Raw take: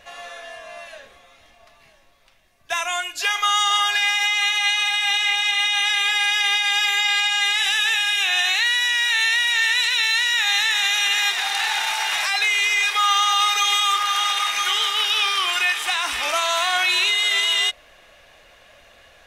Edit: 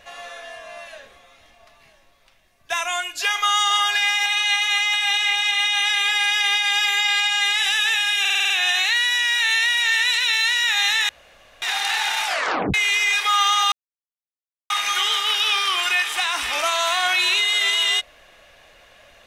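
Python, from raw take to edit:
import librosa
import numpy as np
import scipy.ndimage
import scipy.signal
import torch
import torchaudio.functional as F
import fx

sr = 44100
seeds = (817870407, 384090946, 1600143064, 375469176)

y = fx.edit(x, sr, fx.reverse_span(start_s=4.26, length_s=0.68),
    fx.stutter(start_s=8.2, slice_s=0.05, count=7),
    fx.room_tone_fill(start_s=10.79, length_s=0.53),
    fx.tape_stop(start_s=11.95, length_s=0.49),
    fx.silence(start_s=13.42, length_s=0.98), tone=tone)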